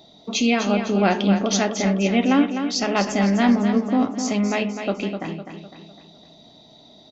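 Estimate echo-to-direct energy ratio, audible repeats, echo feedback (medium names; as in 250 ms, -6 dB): -7.0 dB, 5, 46%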